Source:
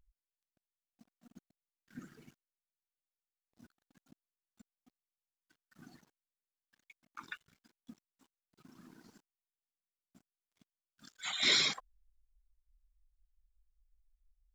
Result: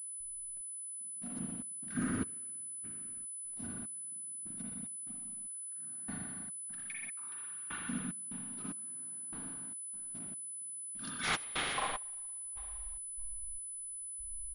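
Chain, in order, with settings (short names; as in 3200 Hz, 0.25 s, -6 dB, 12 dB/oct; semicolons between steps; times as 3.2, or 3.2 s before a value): self-modulated delay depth 0.53 ms; in parallel at -4.5 dB: wavefolder -30 dBFS; on the sum: flipped gate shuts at -22 dBFS, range -25 dB; soft clip -34.5 dBFS, distortion -9 dB; on a send: frequency-shifting echo 0.121 s, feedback 30%, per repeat -44 Hz, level -11.5 dB; on the sum: spring tank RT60 1.9 s, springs 38/56 ms, chirp 35 ms, DRR -6.5 dB; step gate ".xx...xx" 74 bpm -24 dB; harmoniser -4 st -8 dB; AGC gain up to 10 dB; pulse-width modulation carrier 10000 Hz; gain -2.5 dB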